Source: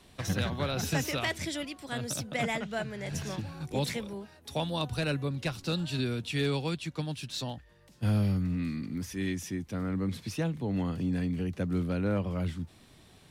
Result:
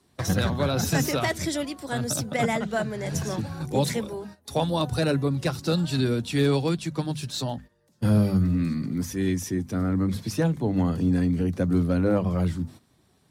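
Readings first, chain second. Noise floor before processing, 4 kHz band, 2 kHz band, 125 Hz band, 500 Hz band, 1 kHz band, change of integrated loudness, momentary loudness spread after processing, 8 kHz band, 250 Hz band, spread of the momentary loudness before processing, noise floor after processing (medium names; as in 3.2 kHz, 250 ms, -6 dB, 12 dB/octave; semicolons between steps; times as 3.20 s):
-58 dBFS, +3.5 dB, +3.5 dB, +6.5 dB, +8.0 dB, +7.0 dB, +7.0 dB, 8 LU, +7.0 dB, +7.5 dB, 7 LU, -64 dBFS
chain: coarse spectral quantiser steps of 15 dB; high-pass 59 Hz; hum notches 50/100/150/200/250 Hz; gate -50 dBFS, range -13 dB; peaking EQ 2.7 kHz -8 dB 1.1 oct; trim +8.5 dB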